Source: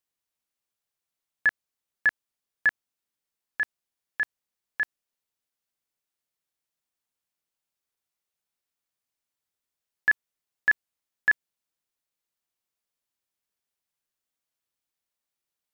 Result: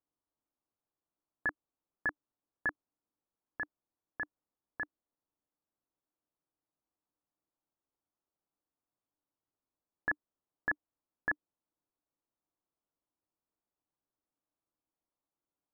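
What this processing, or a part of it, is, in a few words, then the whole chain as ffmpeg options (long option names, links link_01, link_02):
under water: -af "lowpass=frequency=1200:width=0.5412,lowpass=frequency=1200:width=1.3066,equalizer=frequency=300:width_type=o:width=0.27:gain=9,volume=1dB"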